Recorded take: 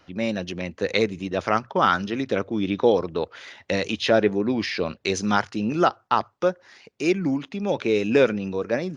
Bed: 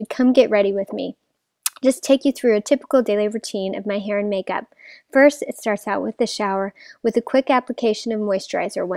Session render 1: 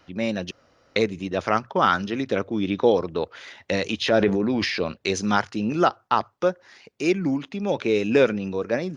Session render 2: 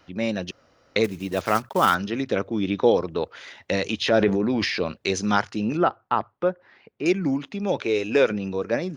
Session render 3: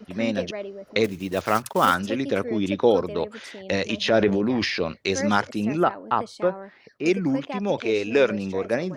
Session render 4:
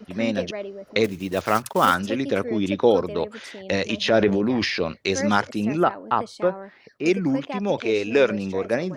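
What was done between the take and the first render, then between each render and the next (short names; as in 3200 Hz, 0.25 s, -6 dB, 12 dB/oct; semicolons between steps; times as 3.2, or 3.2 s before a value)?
0.51–0.96 room tone; 4.01–4.8 transient shaper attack -3 dB, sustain +7 dB
1.04–1.95 block floating point 5-bit; 5.77–7.06 air absorption 380 m; 7.81–8.31 bell 170 Hz -15 dB
add bed -16.5 dB
gain +1 dB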